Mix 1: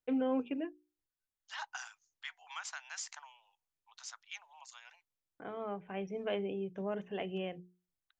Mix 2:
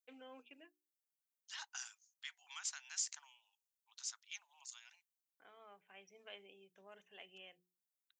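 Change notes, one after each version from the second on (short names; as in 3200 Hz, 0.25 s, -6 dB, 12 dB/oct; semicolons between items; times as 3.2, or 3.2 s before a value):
second voice +5.0 dB; master: add differentiator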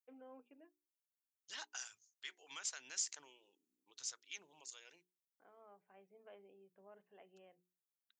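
first voice: add LPF 1000 Hz 12 dB/oct; second voice: remove steep high-pass 770 Hz 48 dB/oct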